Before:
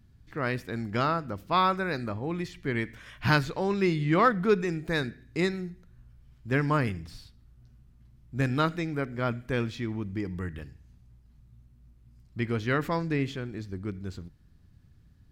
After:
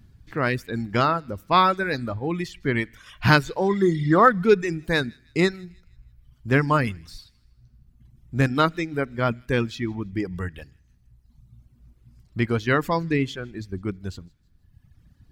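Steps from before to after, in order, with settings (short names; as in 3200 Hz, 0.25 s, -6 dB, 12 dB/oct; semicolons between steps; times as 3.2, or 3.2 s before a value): spectral repair 3.72–4.26, 1900–6100 Hz after; thin delay 0.159 s, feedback 41%, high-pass 2400 Hz, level -14 dB; reverb removal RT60 1.4 s; gain +7 dB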